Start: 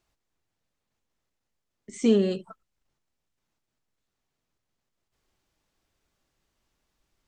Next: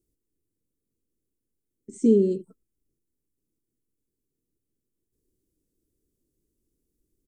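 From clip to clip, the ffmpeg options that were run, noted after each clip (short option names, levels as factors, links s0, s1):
-af "firequalizer=gain_entry='entry(180,0);entry(310,7);entry(460,1);entry(710,-27);entry(9300,3)':delay=0.05:min_phase=1"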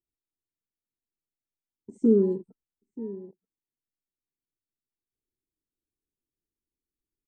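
-filter_complex "[0:a]asplit=2[s0][s1];[s1]adelay=932.9,volume=0.158,highshelf=f=4000:g=-21[s2];[s0][s2]amix=inputs=2:normalize=0,afwtdn=0.00891,volume=0.841"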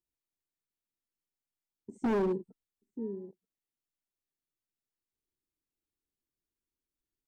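-af "volume=15.8,asoftclip=hard,volume=0.0631,volume=0.794"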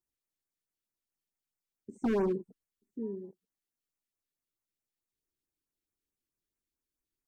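-af "afftfilt=real='re*(1-between(b*sr/1024,710*pow(4100/710,0.5+0.5*sin(2*PI*4.6*pts/sr))/1.41,710*pow(4100/710,0.5+0.5*sin(2*PI*4.6*pts/sr))*1.41))':imag='im*(1-between(b*sr/1024,710*pow(4100/710,0.5+0.5*sin(2*PI*4.6*pts/sr))/1.41,710*pow(4100/710,0.5+0.5*sin(2*PI*4.6*pts/sr))*1.41))':win_size=1024:overlap=0.75"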